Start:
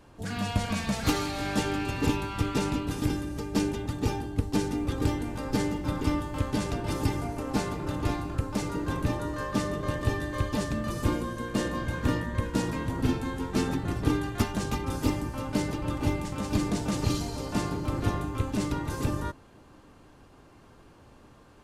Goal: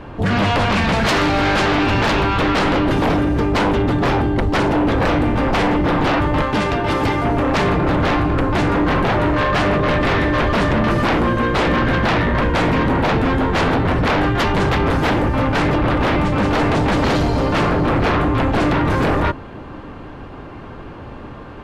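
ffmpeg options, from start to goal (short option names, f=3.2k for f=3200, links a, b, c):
-filter_complex "[0:a]asettb=1/sr,asplit=3[a][b][c];[a]atrim=end=6.414[d];[b]atrim=start=6.41:end=7.25,asetpts=PTS-STARTPTS,afade=t=in:d=0.004:c=qsin,afade=t=out:st=0.836:d=0.004:c=qsin,lowshelf=f=430:g=-10.5[e];[c]atrim=start=7.246[f];[d][e]acrossfade=d=0.004:c1=hsin:c2=qsin[g];[g][f]acrossfade=d=0.004:c1=qsin:c2=hsin,acrossover=split=3400[h][i];[h]aeval=exprs='0.299*sin(PI/2*8.91*val(0)/0.299)':c=same[j];[j][i]amix=inputs=2:normalize=0,volume=-2.5dB"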